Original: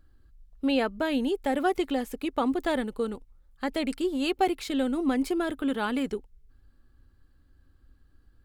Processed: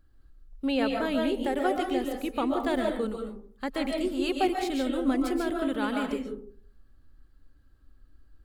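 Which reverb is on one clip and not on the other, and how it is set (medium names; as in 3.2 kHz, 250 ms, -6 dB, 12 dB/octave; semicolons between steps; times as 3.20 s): algorithmic reverb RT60 0.48 s, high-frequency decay 0.35×, pre-delay 100 ms, DRR 1.5 dB; trim -2.5 dB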